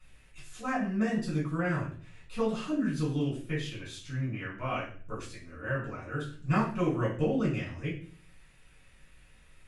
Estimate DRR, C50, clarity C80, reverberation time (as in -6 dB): -7.5 dB, 6.0 dB, 10.5 dB, 0.45 s